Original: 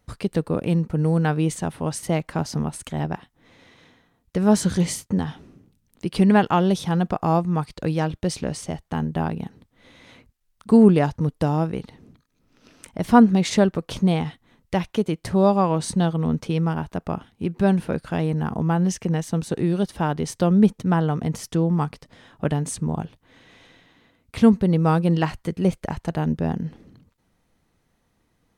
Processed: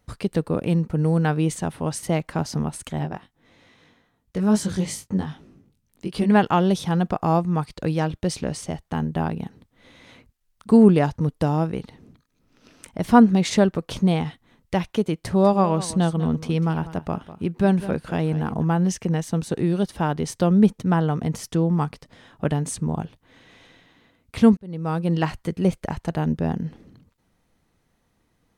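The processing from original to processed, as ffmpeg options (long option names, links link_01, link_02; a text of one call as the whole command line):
ffmpeg -i in.wav -filter_complex "[0:a]asplit=3[link_01][link_02][link_03];[link_01]afade=type=out:start_time=2.98:duration=0.02[link_04];[link_02]flanger=delay=19:depth=2.2:speed=2.4,afade=type=in:start_time=2.98:duration=0.02,afade=type=out:start_time=6.31:duration=0.02[link_05];[link_03]afade=type=in:start_time=6.31:duration=0.02[link_06];[link_04][link_05][link_06]amix=inputs=3:normalize=0,asettb=1/sr,asplit=3[link_07][link_08][link_09];[link_07]atrim=end=15.164[link_10];[link_08]atrim=start=15.16:end=18.65,asetpts=PTS-STARTPTS,afade=type=in:duration=0.004:curve=qsin,afade=type=out:start_time=3.486:duration=0.004:curve=qsin,aecho=1:1:197:0.188,atrim=end_sample=153909[link_11];[link_09]atrim=start=18.646[link_12];[link_10][link_11]acrossfade=duration=0.004:curve1=hsin:curve2=qsin[link_13];[link_13][link_12]acrossfade=duration=0.004:curve1=qsin:curve2=hsin,asplit=2[link_14][link_15];[link_14]atrim=end=24.57,asetpts=PTS-STARTPTS,afade=type=out:start_time=24.566:duration=0.004:curve=hsin[link_16];[link_15]atrim=start=24.57,asetpts=PTS-STARTPTS,afade=type=in:duration=0.71[link_17];[link_16][link_17]concat=n=2:v=0:a=1" out.wav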